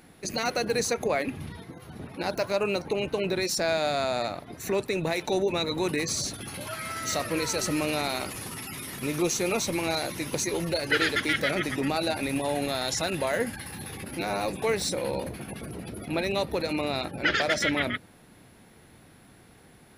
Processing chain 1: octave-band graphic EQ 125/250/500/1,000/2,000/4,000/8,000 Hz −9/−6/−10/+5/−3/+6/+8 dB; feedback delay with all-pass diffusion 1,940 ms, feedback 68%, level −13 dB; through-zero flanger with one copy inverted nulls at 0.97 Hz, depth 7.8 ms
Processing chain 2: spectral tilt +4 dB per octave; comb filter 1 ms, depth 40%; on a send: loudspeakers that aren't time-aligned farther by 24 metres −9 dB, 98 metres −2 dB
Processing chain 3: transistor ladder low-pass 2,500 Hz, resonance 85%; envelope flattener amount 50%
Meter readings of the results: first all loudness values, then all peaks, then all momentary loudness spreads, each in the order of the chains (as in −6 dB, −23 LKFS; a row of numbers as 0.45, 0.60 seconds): −29.5, −20.5, −29.5 LKFS; −11.5, −4.0, −15.0 dBFS; 14, 10, 11 LU